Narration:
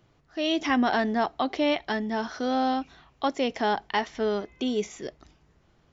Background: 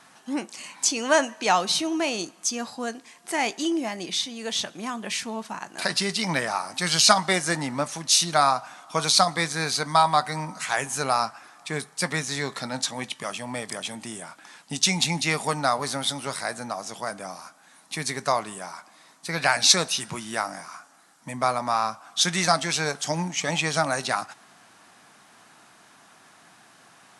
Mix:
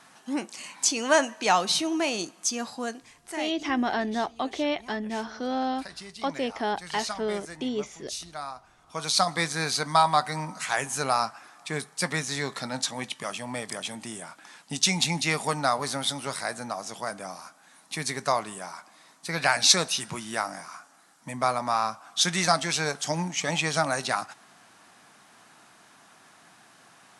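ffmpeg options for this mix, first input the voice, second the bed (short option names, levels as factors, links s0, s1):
-filter_complex "[0:a]adelay=3000,volume=0.708[s0];[1:a]volume=5.31,afade=t=out:st=2.79:d=0.8:silence=0.158489,afade=t=in:st=8.77:d=0.62:silence=0.16788[s1];[s0][s1]amix=inputs=2:normalize=0"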